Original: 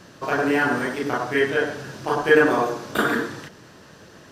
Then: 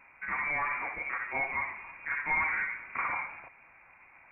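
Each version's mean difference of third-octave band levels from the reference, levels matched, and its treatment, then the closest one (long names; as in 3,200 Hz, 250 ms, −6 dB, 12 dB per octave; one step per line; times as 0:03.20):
14.0 dB: low-shelf EQ 230 Hz −6 dB
soft clipping −15.5 dBFS, distortion −12 dB
voice inversion scrambler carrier 2,600 Hz
level −8.5 dB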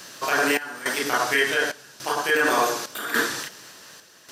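8.5 dB: spectral tilt +4 dB per octave
brickwall limiter −14 dBFS, peak gain reduction 10.5 dB
sample-and-hold tremolo 3.5 Hz, depth 85%
level +4.5 dB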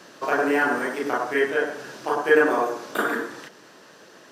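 3.0 dB: high-pass filter 300 Hz 12 dB per octave
dynamic equaliser 3,900 Hz, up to −6 dB, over −41 dBFS, Q 1
speech leveller 2 s
level −1.5 dB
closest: third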